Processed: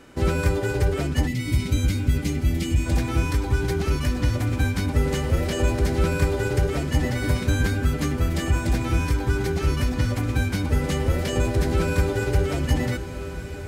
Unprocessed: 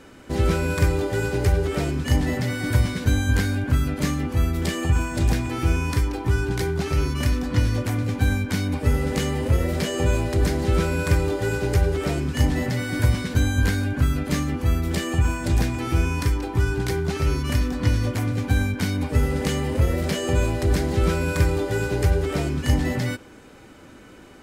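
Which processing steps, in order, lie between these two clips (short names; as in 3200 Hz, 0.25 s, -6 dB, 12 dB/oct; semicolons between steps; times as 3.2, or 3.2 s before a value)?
time stretch by phase-locked vocoder 0.56×; spectral gain 1.27–2.86, 350–1900 Hz -17 dB; diffused feedback echo 1.513 s, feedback 40%, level -11 dB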